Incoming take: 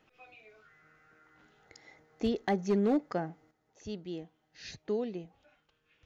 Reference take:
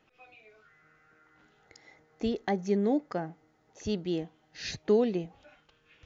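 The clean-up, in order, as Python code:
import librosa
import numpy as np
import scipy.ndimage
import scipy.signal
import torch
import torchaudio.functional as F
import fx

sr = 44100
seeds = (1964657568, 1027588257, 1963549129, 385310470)

y = fx.fix_declip(x, sr, threshold_db=-21.5)
y = fx.gain(y, sr, db=fx.steps((0.0, 0.0), (3.51, 8.5)))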